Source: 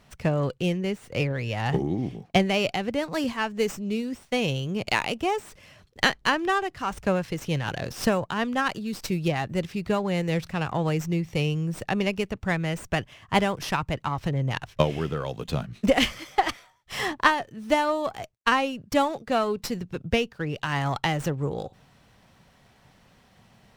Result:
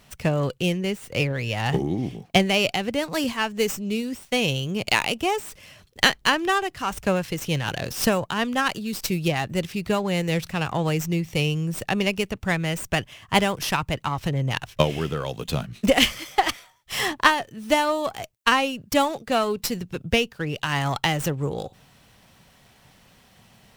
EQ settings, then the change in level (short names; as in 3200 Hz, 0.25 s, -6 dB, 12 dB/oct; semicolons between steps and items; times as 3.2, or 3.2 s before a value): bell 2900 Hz +3 dB; high shelf 6700 Hz +11 dB; +1.5 dB